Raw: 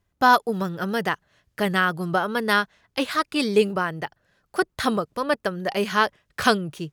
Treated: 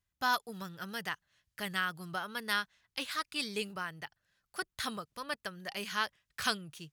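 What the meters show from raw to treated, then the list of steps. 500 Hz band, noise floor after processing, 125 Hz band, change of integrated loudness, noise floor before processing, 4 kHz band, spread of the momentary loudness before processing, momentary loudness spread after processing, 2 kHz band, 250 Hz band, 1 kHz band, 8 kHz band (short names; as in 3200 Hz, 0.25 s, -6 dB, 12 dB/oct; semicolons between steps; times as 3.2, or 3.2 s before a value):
-20.0 dB, under -85 dBFS, -16.5 dB, -13.0 dB, -74 dBFS, -7.5 dB, 8 LU, 10 LU, -11.0 dB, -18.0 dB, -14.5 dB, -6.0 dB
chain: passive tone stack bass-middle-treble 5-5-5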